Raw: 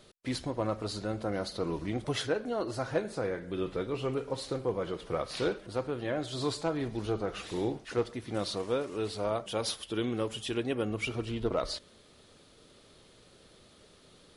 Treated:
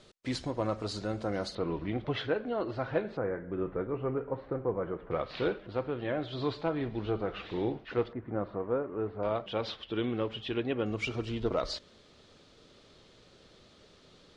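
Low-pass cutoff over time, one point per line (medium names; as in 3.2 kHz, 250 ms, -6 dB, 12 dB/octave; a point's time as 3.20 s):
low-pass 24 dB/octave
8.2 kHz
from 1.55 s 3.5 kHz
from 3.17 s 1.8 kHz
from 5.11 s 3.6 kHz
from 8.13 s 1.6 kHz
from 9.23 s 3.7 kHz
from 10.86 s 6.8 kHz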